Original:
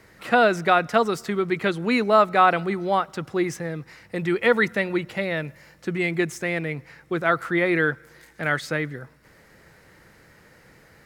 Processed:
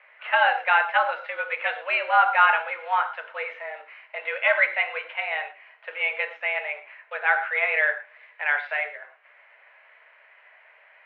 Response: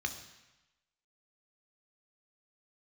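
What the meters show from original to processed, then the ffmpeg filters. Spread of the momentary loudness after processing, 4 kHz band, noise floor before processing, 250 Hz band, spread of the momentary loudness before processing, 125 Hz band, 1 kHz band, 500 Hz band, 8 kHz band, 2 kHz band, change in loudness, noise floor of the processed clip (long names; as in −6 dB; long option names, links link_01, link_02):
17 LU, −1.5 dB, −54 dBFS, below −35 dB, 14 LU, below −40 dB, 0.0 dB, −8.5 dB, below −35 dB, +3.5 dB, −0.5 dB, −56 dBFS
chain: -filter_complex "[0:a]acrusher=bits=5:mode=log:mix=0:aa=0.000001[link_01];[1:a]atrim=start_sample=2205,atrim=end_sample=6174,asetrate=48510,aresample=44100[link_02];[link_01][link_02]afir=irnorm=-1:irlink=0,highpass=frequency=520:width_type=q:width=0.5412,highpass=frequency=520:width_type=q:width=1.307,lowpass=frequency=2800:width_type=q:width=0.5176,lowpass=frequency=2800:width_type=q:width=0.7071,lowpass=frequency=2800:width_type=q:width=1.932,afreqshift=140"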